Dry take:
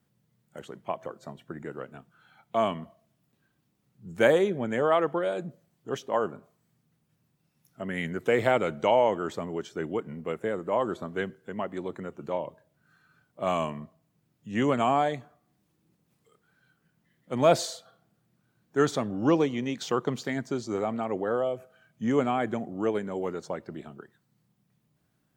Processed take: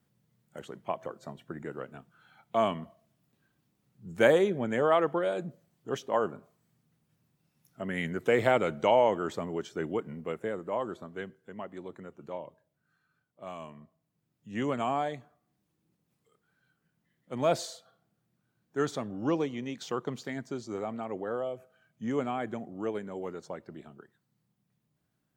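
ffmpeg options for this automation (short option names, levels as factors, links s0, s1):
-af "volume=2.51,afade=t=out:st=9.9:d=1.17:silence=0.446684,afade=t=out:st=12.34:d=1.22:silence=0.446684,afade=t=in:st=13.56:d=0.97:silence=0.354813"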